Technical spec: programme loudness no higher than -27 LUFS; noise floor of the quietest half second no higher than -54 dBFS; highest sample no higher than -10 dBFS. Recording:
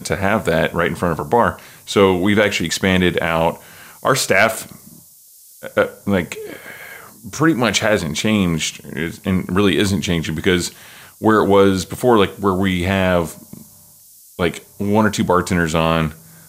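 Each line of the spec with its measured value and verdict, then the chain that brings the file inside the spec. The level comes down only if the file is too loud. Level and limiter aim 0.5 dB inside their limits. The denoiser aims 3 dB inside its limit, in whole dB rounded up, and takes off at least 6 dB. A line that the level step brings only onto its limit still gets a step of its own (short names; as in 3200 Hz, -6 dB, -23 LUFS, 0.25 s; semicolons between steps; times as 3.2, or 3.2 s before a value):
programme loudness -17.5 LUFS: fail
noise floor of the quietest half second -46 dBFS: fail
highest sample -2.5 dBFS: fail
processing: gain -10 dB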